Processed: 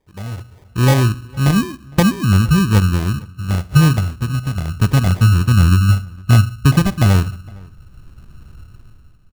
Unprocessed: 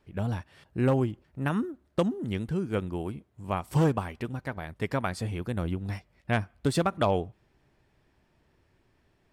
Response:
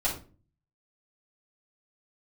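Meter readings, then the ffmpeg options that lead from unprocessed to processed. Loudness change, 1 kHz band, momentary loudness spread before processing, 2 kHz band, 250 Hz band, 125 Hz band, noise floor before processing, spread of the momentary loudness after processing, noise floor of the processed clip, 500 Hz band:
+15.0 dB, +8.0 dB, 12 LU, +12.5 dB, +12.5 dB, +18.5 dB, −69 dBFS, 12 LU, −45 dBFS, +3.5 dB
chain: -filter_complex "[0:a]asplit=2[link_01][link_02];[1:a]atrim=start_sample=2205,lowpass=frequency=1100:width=0.5412,lowpass=frequency=1100:width=1.3066[link_03];[link_02][link_03]afir=irnorm=-1:irlink=0,volume=-22.5dB[link_04];[link_01][link_04]amix=inputs=2:normalize=0,asubboost=boost=10.5:cutoff=150,dynaudnorm=framelen=180:gausssize=7:maxgain=13.5dB,acrusher=samples=32:mix=1:aa=0.000001,asplit=2[link_05][link_06];[link_06]adelay=460.6,volume=-25dB,highshelf=frequency=4000:gain=-10.4[link_07];[link_05][link_07]amix=inputs=2:normalize=0,volume=-1dB"

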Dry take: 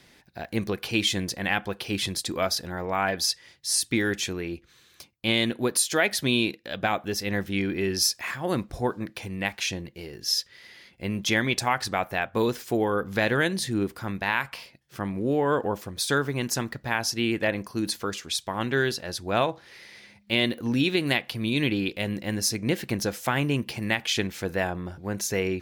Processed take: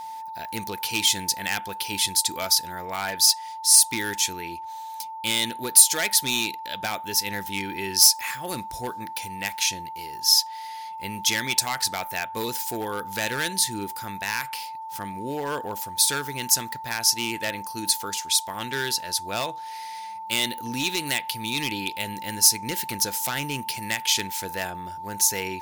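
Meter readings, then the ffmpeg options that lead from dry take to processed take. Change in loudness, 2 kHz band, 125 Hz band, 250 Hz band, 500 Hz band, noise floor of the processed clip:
+3.5 dB, −1.5 dB, −7.5 dB, −7.5 dB, −7.0 dB, −36 dBFS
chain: -af "volume=17.5dB,asoftclip=hard,volume=-17.5dB,crystalizer=i=7:c=0,aeval=exprs='val(0)+0.0501*sin(2*PI*890*n/s)':channel_layout=same,volume=-7.5dB"

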